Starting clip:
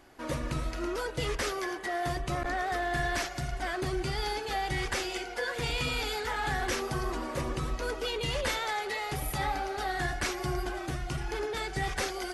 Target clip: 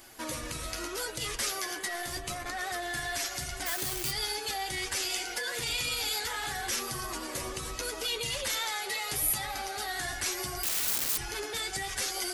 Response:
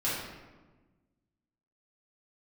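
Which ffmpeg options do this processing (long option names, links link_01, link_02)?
-filter_complex "[0:a]asettb=1/sr,asplit=3[link_01][link_02][link_03];[link_01]atrim=end=1.874[link_04];[link_02]atrim=start=1.87:end=2.6,asetpts=PTS-STARTPTS,afade=type=in:duration=0.004:curve=qsin,afade=type=out:start_time=0.726:duration=0.004:curve=qsin,aeval=exprs='0.0944*(cos(1*acos(clip(val(0)/0.0944,-1,1)))-cos(1*PI/2))+0.015*(cos(2*acos(clip(val(0)/0.0944,-1,1)))-cos(2*PI/2))':channel_layout=same[link_05];[link_03]atrim=start=2.596[link_06];[link_04][link_05]acrossfade=duration=0.004:curve1=hsin:curve2=qsin[link_07];[link_07][link_06]acrossfade=duration=0.004:curve1=qsin:curve2=hsin,asplit=3[link_08][link_09][link_10];[link_08]afade=type=out:start_time=3.65:duration=0.02[link_11];[link_09]acrusher=bits=7:dc=4:mix=0:aa=0.000001,afade=type=in:start_time=3.65:duration=0.02,afade=type=out:start_time=4.1:duration=0.02[link_12];[link_10]afade=type=in:start_time=4.1:duration=0.02[link_13];[link_11][link_12][link_13]amix=inputs=3:normalize=0,flanger=delay=8.5:depth=2.4:regen=27:speed=0.73:shape=triangular,alimiter=level_in=9.5dB:limit=-24dB:level=0:latency=1:release=146,volume=-9.5dB,asettb=1/sr,asplit=3[link_14][link_15][link_16];[link_14]atrim=end=10.634[link_17];[link_15]atrim=start=10.63:end=11.18,asetpts=PTS-STARTPTS,afade=type=in:duration=0.004:curve=qsin,afade=type=out:start_time=0.546:duration=0.004:curve=qsin,aeval=exprs='(mod(112*val(0)+1,2)-1)/112':channel_layout=same[link_18];[link_16]atrim=start=11.176[link_19];[link_17][link_18]acrossfade=duration=0.004:curve1=hsin:curve2=qsin[link_20];[link_20][link_19]acrossfade=duration=0.004:curve1=qsin:curve2=hsin,crystalizer=i=5.5:c=0,asoftclip=type=tanh:threshold=-16dB,volume=3dB"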